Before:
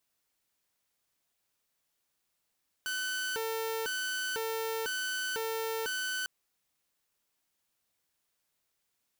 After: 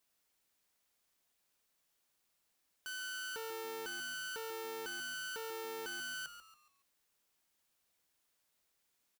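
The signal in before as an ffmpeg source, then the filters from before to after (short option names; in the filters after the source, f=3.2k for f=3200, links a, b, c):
-f lavfi -i "aevalsrc='0.0335*(2*mod((980*t+530/1*(0.5-abs(mod(1*t,1)-0.5))),1)-1)':d=3.4:s=44100"
-filter_complex "[0:a]equalizer=f=110:t=o:w=0.67:g=-5.5,alimiter=level_in=14dB:limit=-24dB:level=0:latency=1,volume=-14dB,asplit=5[a][b][c][d][e];[b]adelay=140,afreqshift=-100,volume=-11dB[f];[c]adelay=280,afreqshift=-200,volume=-19.4dB[g];[d]adelay=420,afreqshift=-300,volume=-27.8dB[h];[e]adelay=560,afreqshift=-400,volume=-36.2dB[i];[a][f][g][h][i]amix=inputs=5:normalize=0"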